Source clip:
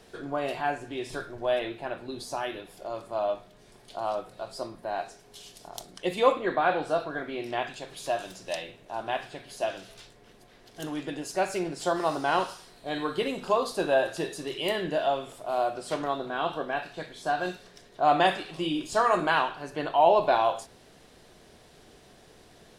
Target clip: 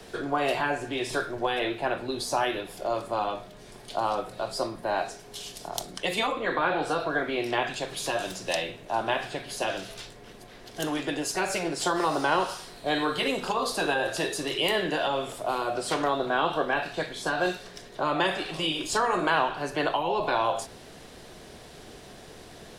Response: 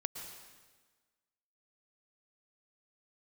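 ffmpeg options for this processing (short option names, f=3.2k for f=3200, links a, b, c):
-filter_complex "[0:a]acrossover=split=130|320|700[a][b][c][d];[a]acompressor=threshold=-53dB:ratio=4[e];[b]acompressor=threshold=-49dB:ratio=4[f];[c]acompressor=threshold=-32dB:ratio=4[g];[d]acompressor=threshold=-32dB:ratio=4[h];[e][f][g][h]amix=inputs=4:normalize=0,afftfilt=real='re*lt(hypot(re,im),0.224)':imag='im*lt(hypot(re,im),0.224)':win_size=1024:overlap=0.75,volume=8dB"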